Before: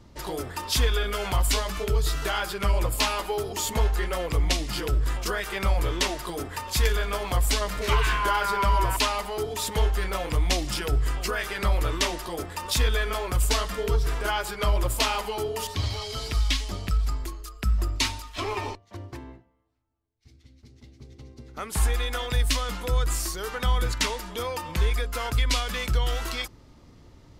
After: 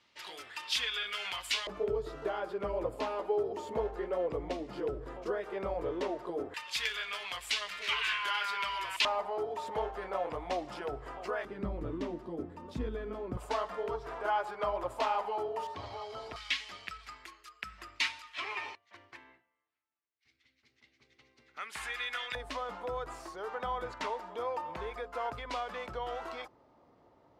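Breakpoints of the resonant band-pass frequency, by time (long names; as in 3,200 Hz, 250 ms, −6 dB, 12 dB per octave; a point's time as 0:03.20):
resonant band-pass, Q 1.6
2,700 Hz
from 0:01.67 480 Hz
from 0:06.54 2,700 Hz
from 0:09.05 690 Hz
from 0:11.45 250 Hz
from 0:13.37 760 Hz
from 0:16.36 2,100 Hz
from 0:22.35 730 Hz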